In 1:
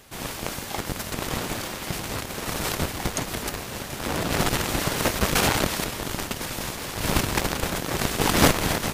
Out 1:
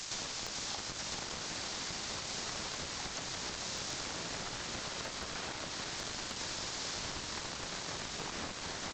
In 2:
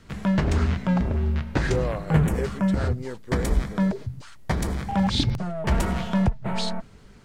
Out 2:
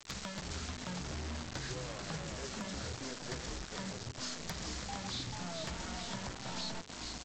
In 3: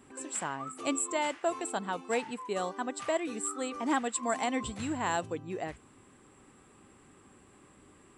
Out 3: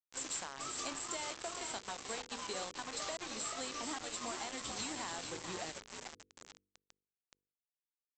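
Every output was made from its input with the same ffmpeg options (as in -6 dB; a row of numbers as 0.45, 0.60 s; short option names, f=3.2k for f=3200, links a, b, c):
-filter_complex "[0:a]acrossover=split=3200[a][b];[b]acompressor=threshold=-41dB:ratio=4:attack=1:release=60[c];[a][c]amix=inputs=2:normalize=0,tiltshelf=f=1.1k:g=-5,acrossover=split=680|2200[d][e][f];[f]asoftclip=type=tanh:threshold=-28dB[g];[d][e][g]amix=inputs=3:normalize=0,flanger=delay=9.8:depth=8.9:regen=-77:speed=0.56:shape=triangular,acompressor=threshold=-46dB:ratio=8,highshelf=f=3.5k:t=q:w=1.5:g=8.5,asplit=8[h][i][j][k][l][m][n][o];[i]adelay=437,afreqshift=58,volume=-6dB[p];[j]adelay=874,afreqshift=116,volume=-11dB[q];[k]adelay=1311,afreqshift=174,volume=-16.1dB[r];[l]adelay=1748,afreqshift=232,volume=-21.1dB[s];[m]adelay=2185,afreqshift=290,volume=-26.1dB[t];[n]adelay=2622,afreqshift=348,volume=-31.2dB[u];[o]adelay=3059,afreqshift=406,volume=-36.2dB[v];[h][p][q][r][s][t][u][v]amix=inputs=8:normalize=0,aresample=16000,acrusher=bits=7:mix=0:aa=0.000001,aresample=44100,aeval=exprs='0.0237*(abs(mod(val(0)/0.0237+3,4)-2)-1)':c=same,bandreject=f=49.03:t=h:w=4,bandreject=f=98.06:t=h:w=4,bandreject=f=147.09:t=h:w=4,bandreject=f=196.12:t=h:w=4,bandreject=f=245.15:t=h:w=4,bandreject=f=294.18:t=h:w=4,bandreject=f=343.21:t=h:w=4,bandreject=f=392.24:t=h:w=4,bandreject=f=441.27:t=h:w=4,bandreject=f=490.3:t=h:w=4,volume=5dB"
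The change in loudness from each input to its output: -12.5, -16.0, -7.5 LU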